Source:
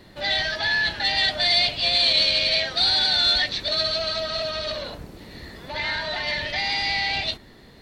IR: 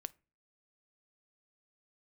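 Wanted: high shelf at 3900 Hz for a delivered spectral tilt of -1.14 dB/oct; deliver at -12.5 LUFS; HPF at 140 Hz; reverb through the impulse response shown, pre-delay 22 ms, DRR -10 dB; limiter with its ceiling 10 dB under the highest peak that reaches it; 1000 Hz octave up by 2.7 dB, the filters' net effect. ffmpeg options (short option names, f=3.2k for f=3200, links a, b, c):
-filter_complex "[0:a]highpass=140,equalizer=f=1k:t=o:g=3.5,highshelf=f=3.9k:g=5.5,alimiter=limit=-15dB:level=0:latency=1,asplit=2[a][b];[1:a]atrim=start_sample=2205,adelay=22[c];[b][c]afir=irnorm=-1:irlink=0,volume=13.5dB[d];[a][d]amix=inputs=2:normalize=0,volume=-0.5dB"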